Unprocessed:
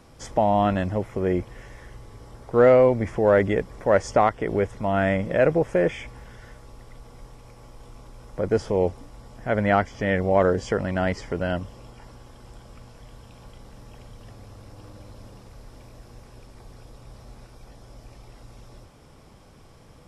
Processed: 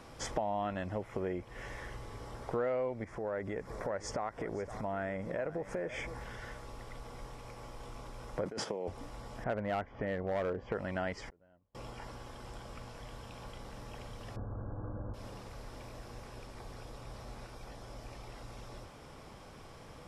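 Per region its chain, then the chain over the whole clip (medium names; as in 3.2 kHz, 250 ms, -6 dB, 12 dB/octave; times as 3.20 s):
3.04–6.21 s: peaking EQ 2.9 kHz -8 dB 0.61 oct + compression 2.5:1, threshold -36 dBFS + delay 518 ms -16 dB
8.45–8.88 s: high-pass 150 Hz 24 dB/octave + gate -38 dBFS, range -10 dB + compressor with a negative ratio -31 dBFS
9.44–10.75 s: low-pass 1.5 kHz + overload inside the chain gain 16 dB
11.29–11.75 s: low-pass 1 kHz 6 dB/octave + inverted gate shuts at -35 dBFS, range -39 dB
14.36–15.14 s: brick-wall FIR low-pass 1.7 kHz + bass shelf 430 Hz +10.5 dB
whole clip: treble shelf 4.5 kHz -6.5 dB; compression 6:1, threshold -34 dBFS; bass shelf 400 Hz -7.5 dB; trim +4 dB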